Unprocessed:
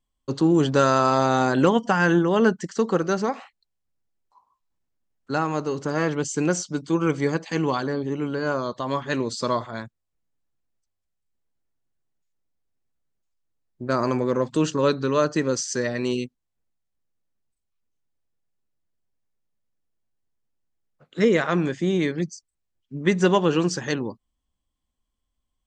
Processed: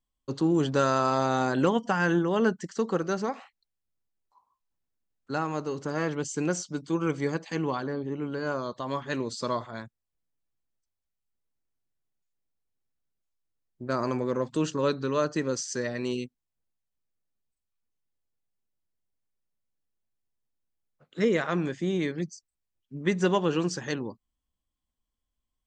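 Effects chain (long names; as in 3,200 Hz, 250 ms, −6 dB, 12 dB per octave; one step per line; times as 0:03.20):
0:07.55–0:08.31: high-shelf EQ 6,000 Hz → 3,800 Hz −11 dB
level −5.5 dB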